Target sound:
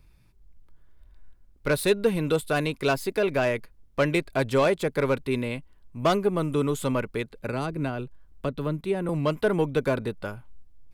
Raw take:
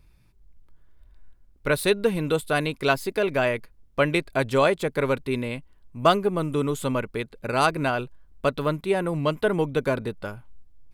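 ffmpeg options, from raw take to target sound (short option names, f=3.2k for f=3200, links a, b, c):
-filter_complex "[0:a]asettb=1/sr,asplit=3[a][b][c];[a]atrim=end=7.484[d];[b]atrim=start=7.48:end=9.09,asetpts=PTS-STARTPTS,afade=t=in:d=0.004:c=qsin,afade=t=out:st=1.606:d=0.004:c=qsin,acrossover=split=390[e][f];[f]acompressor=threshold=-35dB:ratio=3[g];[e][g]amix=inputs=2:normalize=0[h];[c]atrim=start=9.086[i];[d][h]acrossfade=d=0.004:c1=hsin:c2=qsin[j];[j][i]acrossfade=d=0.004:c1=qsin:c2=hsin,acrossover=split=520[k][l];[l]asoftclip=type=tanh:threshold=-19.5dB[m];[k][m]amix=inputs=2:normalize=0"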